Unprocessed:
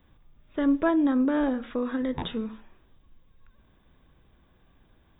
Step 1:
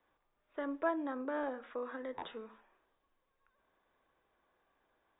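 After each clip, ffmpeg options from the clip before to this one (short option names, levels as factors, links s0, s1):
-filter_complex "[0:a]acrossover=split=400 2300:gain=0.0708 1 0.251[s0][s1][s2];[s0][s1][s2]amix=inputs=3:normalize=0,volume=0.501"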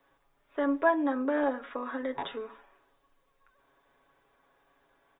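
-af "aecho=1:1:7.2:0.67,volume=2.24"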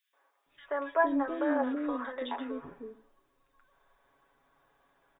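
-filter_complex "[0:a]acrossover=split=420|2500[s0][s1][s2];[s1]adelay=130[s3];[s0]adelay=460[s4];[s4][s3][s2]amix=inputs=3:normalize=0"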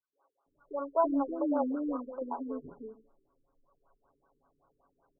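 -af "afftfilt=real='re*lt(b*sr/1024,440*pow(1600/440,0.5+0.5*sin(2*PI*5.2*pts/sr)))':imag='im*lt(b*sr/1024,440*pow(1600/440,0.5+0.5*sin(2*PI*5.2*pts/sr)))':win_size=1024:overlap=0.75"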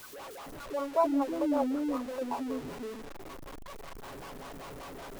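-af "aeval=exprs='val(0)+0.5*0.0126*sgn(val(0))':c=same"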